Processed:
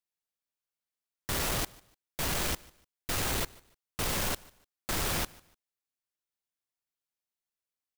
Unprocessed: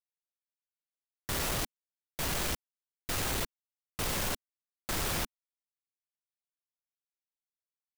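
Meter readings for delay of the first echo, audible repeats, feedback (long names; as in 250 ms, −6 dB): 148 ms, 2, 29%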